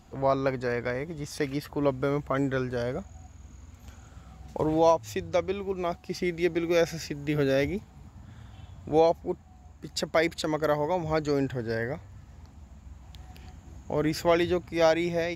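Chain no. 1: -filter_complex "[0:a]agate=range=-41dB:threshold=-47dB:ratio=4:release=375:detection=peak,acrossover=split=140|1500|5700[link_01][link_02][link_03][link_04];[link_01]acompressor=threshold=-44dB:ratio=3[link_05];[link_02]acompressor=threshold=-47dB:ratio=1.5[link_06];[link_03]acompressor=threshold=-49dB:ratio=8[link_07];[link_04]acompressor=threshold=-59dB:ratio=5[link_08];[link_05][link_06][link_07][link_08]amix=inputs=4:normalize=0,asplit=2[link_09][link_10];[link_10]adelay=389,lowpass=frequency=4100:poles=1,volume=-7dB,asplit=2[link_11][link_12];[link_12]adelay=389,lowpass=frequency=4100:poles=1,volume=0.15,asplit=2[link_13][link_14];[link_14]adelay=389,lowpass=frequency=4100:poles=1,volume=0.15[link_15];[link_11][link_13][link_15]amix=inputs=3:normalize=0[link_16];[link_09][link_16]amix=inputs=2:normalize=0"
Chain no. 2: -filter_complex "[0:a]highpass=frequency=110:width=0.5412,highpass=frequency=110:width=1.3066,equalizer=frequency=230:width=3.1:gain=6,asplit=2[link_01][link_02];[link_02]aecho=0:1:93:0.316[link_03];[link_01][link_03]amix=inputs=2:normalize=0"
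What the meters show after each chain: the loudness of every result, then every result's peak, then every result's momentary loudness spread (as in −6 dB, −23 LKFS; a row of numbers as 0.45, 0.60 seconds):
−36.0, −27.0 LKFS; −20.0, −9.5 dBFS; 15, 11 LU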